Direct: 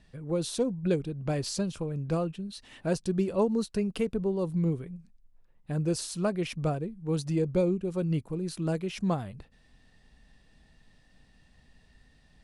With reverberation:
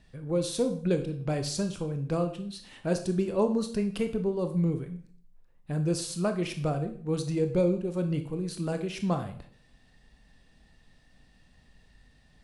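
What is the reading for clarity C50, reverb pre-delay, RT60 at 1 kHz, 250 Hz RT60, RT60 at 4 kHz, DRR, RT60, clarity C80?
11.0 dB, 21 ms, 0.50 s, 0.60 s, 0.50 s, 7.0 dB, 0.50 s, 14.5 dB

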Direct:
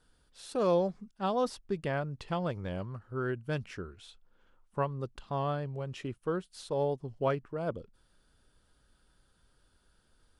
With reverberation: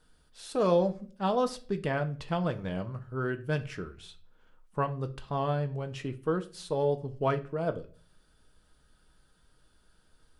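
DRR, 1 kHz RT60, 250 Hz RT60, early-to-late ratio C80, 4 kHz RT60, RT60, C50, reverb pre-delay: 7.0 dB, 0.35 s, 0.60 s, 22.0 dB, 0.35 s, 0.45 s, 17.0 dB, 5 ms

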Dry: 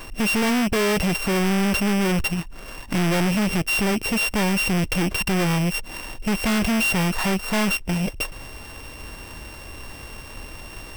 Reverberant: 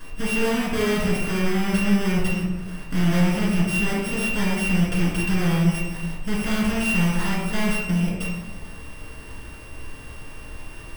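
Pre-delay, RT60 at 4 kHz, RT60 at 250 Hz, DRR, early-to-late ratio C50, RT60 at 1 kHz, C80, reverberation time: 5 ms, 0.70 s, 1.7 s, -6.0 dB, 1.0 dB, 1.0 s, 4.0 dB, 1.2 s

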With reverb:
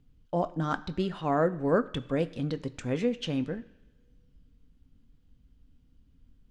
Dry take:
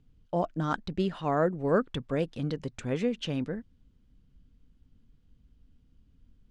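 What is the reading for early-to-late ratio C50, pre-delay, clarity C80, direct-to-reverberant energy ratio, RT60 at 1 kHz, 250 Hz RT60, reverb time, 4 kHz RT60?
17.5 dB, 3 ms, 19.0 dB, 10.5 dB, 1.1 s, 1.0 s, 1.3 s, 2.1 s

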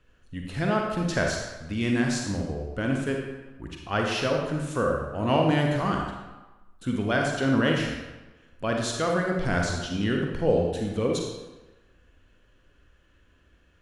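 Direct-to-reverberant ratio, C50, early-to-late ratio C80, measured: 0.5 dB, 2.0 dB, 4.5 dB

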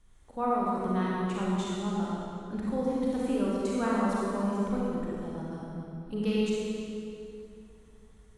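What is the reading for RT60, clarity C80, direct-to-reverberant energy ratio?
2.8 s, -2.0 dB, -6.0 dB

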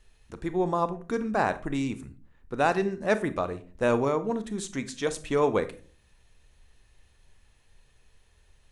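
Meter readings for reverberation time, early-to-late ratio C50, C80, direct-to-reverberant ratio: 0.40 s, 15.0 dB, 20.0 dB, 11.5 dB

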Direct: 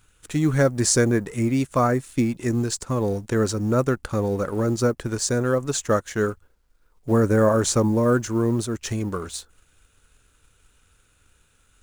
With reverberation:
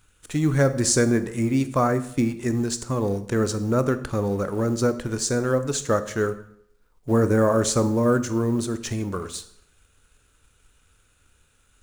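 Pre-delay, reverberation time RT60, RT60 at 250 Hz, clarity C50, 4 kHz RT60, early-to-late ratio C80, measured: 19 ms, 0.70 s, 0.70 s, 14.0 dB, 0.55 s, 17.0 dB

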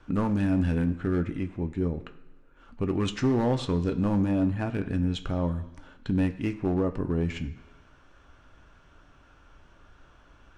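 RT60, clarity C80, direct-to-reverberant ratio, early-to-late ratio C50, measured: 1.2 s, 15.5 dB, 7.0 dB, 13.5 dB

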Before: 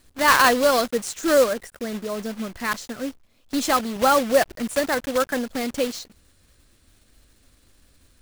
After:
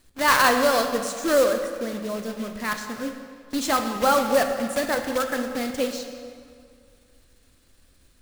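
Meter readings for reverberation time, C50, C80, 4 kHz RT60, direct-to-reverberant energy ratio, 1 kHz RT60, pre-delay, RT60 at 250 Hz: 2.2 s, 6.5 dB, 7.5 dB, 1.6 s, 5.5 dB, 2.2 s, 17 ms, 2.2 s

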